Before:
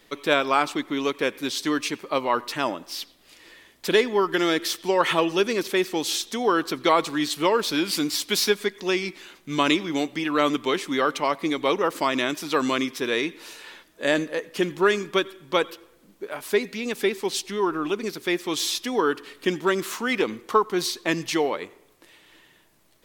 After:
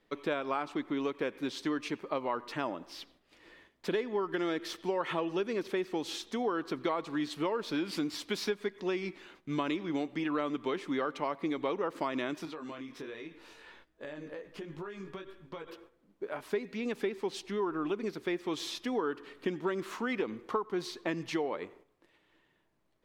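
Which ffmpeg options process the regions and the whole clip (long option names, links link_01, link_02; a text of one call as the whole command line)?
ffmpeg -i in.wav -filter_complex "[0:a]asettb=1/sr,asplit=3[link_01][link_02][link_03];[link_01]atrim=end=12.454[link_04];[link_02]atrim=start=12.45:end=15.68,asetpts=PTS-STARTPTS,afade=type=in:duration=0.004:curve=qsin,afade=type=out:start_time=3.226:duration=0.004:curve=qsin,flanger=delay=18.5:depth=3.6:speed=1.3,asubboost=boost=4:cutoff=130,acompressor=threshold=-33dB:ratio=20:attack=3.2:release=140:knee=1:detection=peak[link_05];[link_03]atrim=start=15.676[link_06];[link_04][link_05]acrossfade=duration=0.004:curve1=hsin:curve2=qsin[link_07];[link_07][link_06]acrossfade=duration=0.004:curve1=qsin:curve2=hsin,agate=range=-8dB:threshold=-51dB:ratio=16:detection=peak,lowpass=frequency=1500:poles=1,acompressor=threshold=-26dB:ratio=4,volume=-3.5dB" out.wav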